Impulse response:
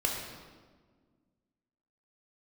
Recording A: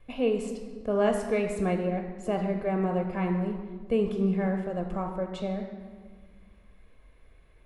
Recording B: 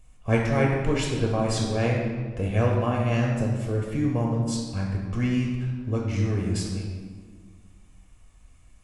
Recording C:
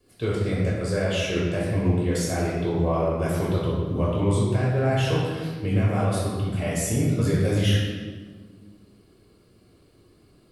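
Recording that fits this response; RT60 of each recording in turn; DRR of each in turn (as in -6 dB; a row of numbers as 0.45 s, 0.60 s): B; 1.6 s, 1.6 s, 1.6 s; 4.5 dB, -1.5 dB, -7.0 dB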